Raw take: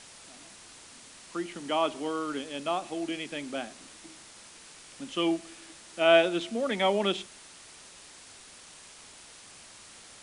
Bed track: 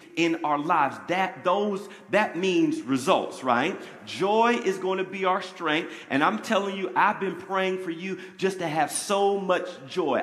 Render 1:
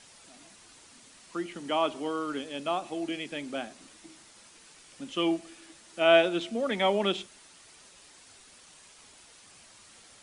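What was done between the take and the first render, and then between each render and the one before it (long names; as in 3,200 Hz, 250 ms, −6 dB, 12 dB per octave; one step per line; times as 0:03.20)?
broadband denoise 6 dB, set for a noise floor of −51 dBFS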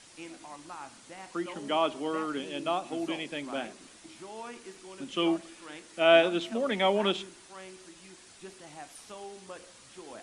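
mix in bed track −21.5 dB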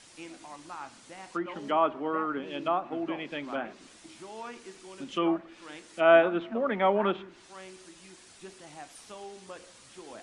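dynamic equaliser 1,300 Hz, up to +6 dB, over −44 dBFS, Q 1.2
treble cut that deepens with the level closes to 1,700 Hz, closed at −28 dBFS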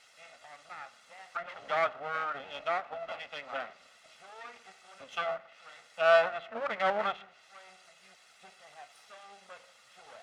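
lower of the sound and its delayed copy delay 1.5 ms
resonant band-pass 1,700 Hz, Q 0.58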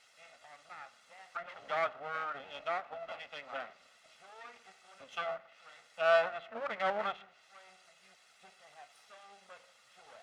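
level −4 dB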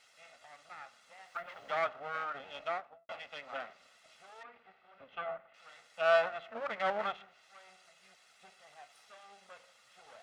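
0:01.26–0:01.71: log-companded quantiser 8 bits
0:02.66–0:03.09: fade out and dull
0:04.43–0:05.54: high-frequency loss of the air 430 metres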